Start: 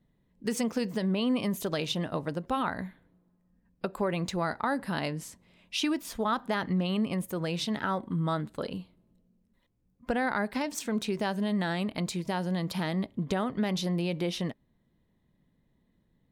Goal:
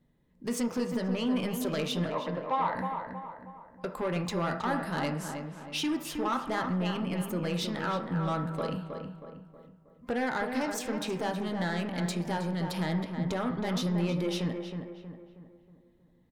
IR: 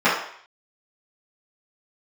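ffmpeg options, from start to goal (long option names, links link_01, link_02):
-filter_complex "[0:a]asoftclip=type=tanh:threshold=-27dB,asettb=1/sr,asplit=3[link_01][link_02][link_03];[link_01]atrim=end=2.104[link_04];[link_02]atrim=start=2.1:end=2.75,asetpts=PTS-STARTPTS,afade=type=in:duration=0.004:curve=qsin,afade=type=out:start_time=0.646:duration=0.004:curve=qsin,highpass=440,equalizer=frequency=580:width_type=q:width=4:gain=4,equalizer=frequency=980:width_type=q:width=4:gain=10,equalizer=frequency=1400:width_type=q:width=4:gain=-9,equalizer=frequency=2000:width_type=q:width=4:gain=5,equalizer=frequency=3100:width_type=q:width=4:gain=-5,lowpass=frequency=3900:width=0.5412,lowpass=frequency=3900:width=1.3066[link_05];[link_03]atrim=start=2.746[link_06];[link_04][link_05]acrossfade=duration=0.004:curve1=hsin:curve2=qsin[link_07];[link_07][link_06]acrossfade=duration=0.004:curve1=qsin:curve2=hsin,asplit=2[link_08][link_09];[link_09]adelay=318,lowpass=frequency=2100:poles=1,volume=-6dB,asplit=2[link_10][link_11];[link_11]adelay=318,lowpass=frequency=2100:poles=1,volume=0.47,asplit=2[link_12][link_13];[link_13]adelay=318,lowpass=frequency=2100:poles=1,volume=0.47,asplit=2[link_14][link_15];[link_15]adelay=318,lowpass=frequency=2100:poles=1,volume=0.47,asplit=2[link_16][link_17];[link_17]adelay=318,lowpass=frequency=2100:poles=1,volume=0.47,asplit=2[link_18][link_19];[link_19]adelay=318,lowpass=frequency=2100:poles=1,volume=0.47[link_20];[link_08][link_10][link_12][link_14][link_16][link_18][link_20]amix=inputs=7:normalize=0,asplit=2[link_21][link_22];[1:a]atrim=start_sample=2205[link_23];[link_22][link_23]afir=irnorm=-1:irlink=0,volume=-26.5dB[link_24];[link_21][link_24]amix=inputs=2:normalize=0"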